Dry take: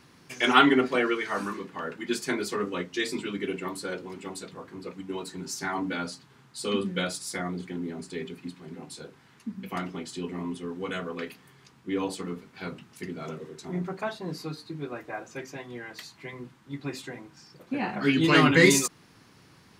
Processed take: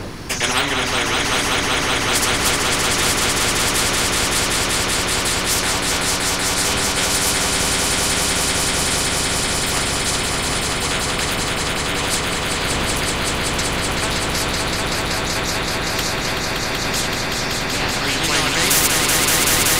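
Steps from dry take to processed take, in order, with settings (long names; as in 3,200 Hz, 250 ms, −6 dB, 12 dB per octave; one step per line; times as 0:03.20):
wind on the microphone 120 Hz −27 dBFS
echo that builds up and dies away 190 ms, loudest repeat 5, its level −6 dB
every bin compressed towards the loudest bin 4 to 1
level +1 dB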